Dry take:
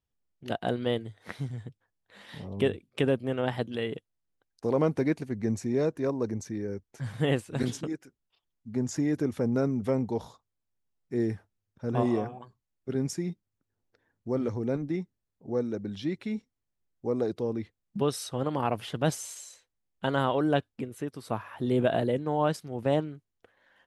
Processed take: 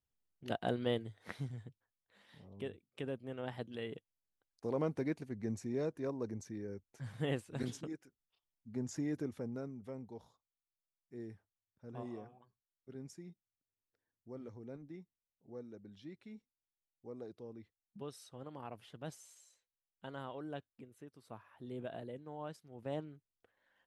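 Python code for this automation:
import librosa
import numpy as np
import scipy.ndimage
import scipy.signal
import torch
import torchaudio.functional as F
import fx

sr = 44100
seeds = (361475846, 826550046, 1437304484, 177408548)

y = fx.gain(x, sr, db=fx.line((1.33, -6.0), (2.36, -17.0), (2.86, -17.0), (3.96, -10.0), (9.16, -10.0), (9.77, -19.0), (22.62, -19.0), (23.11, -12.0)))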